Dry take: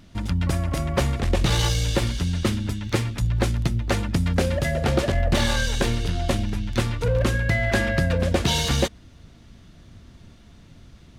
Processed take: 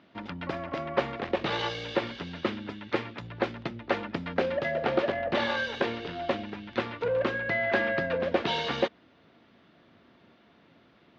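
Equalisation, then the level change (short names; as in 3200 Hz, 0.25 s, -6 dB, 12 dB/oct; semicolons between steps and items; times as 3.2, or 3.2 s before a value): BPF 350–5500 Hz; air absorption 290 m; 0.0 dB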